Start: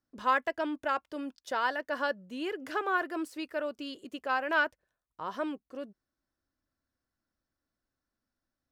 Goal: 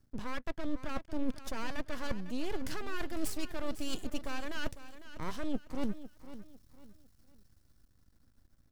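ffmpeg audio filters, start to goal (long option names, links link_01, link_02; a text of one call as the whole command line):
ffmpeg -i in.wav -filter_complex "[0:a]lowshelf=frequency=250:gain=6,acrossover=split=780|3000[link_01][link_02][link_03];[link_03]dynaudnorm=framelen=330:gausssize=11:maxgain=10dB[link_04];[link_01][link_02][link_04]amix=inputs=3:normalize=0,alimiter=level_in=1.5dB:limit=-24dB:level=0:latency=1:release=237,volume=-1.5dB,areverse,acompressor=threshold=-46dB:ratio=8,areverse,aeval=exprs='max(val(0),0)':channel_layout=same,bass=frequency=250:gain=12,treble=frequency=4000:gain=3,aecho=1:1:502|1004|1506:0.211|0.0697|0.023,volume=12dB" out.wav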